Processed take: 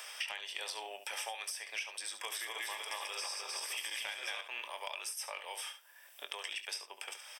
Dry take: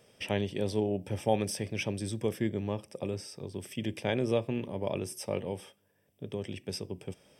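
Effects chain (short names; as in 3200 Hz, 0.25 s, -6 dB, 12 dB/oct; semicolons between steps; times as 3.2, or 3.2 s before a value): 2.08–4.41 regenerating reverse delay 0.152 s, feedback 63%, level -0.5 dB; HPF 980 Hz 24 dB/oct; compressor 12:1, threshold -44 dBFS, peak gain reduction 14 dB; soft clip -31.5 dBFS, distortion -28 dB; early reflections 22 ms -11 dB, 70 ms -11 dB; three-band squash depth 70%; gain +7.5 dB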